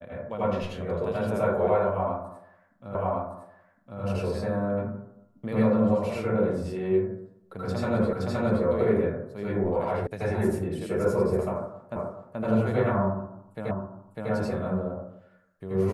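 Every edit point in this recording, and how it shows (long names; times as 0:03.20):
0:02.95: the same again, the last 1.06 s
0:08.13: the same again, the last 0.52 s
0:10.07: cut off before it has died away
0:11.96: the same again, the last 0.43 s
0:13.71: the same again, the last 0.6 s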